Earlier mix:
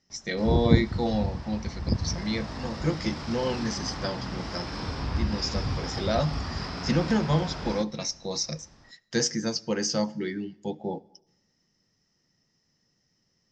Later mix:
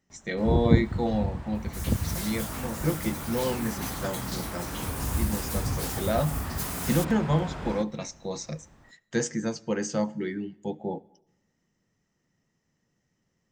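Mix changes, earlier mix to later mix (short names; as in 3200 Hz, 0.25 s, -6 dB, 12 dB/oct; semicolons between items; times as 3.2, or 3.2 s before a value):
second sound: unmuted; master: remove synth low-pass 5200 Hz, resonance Q 6.1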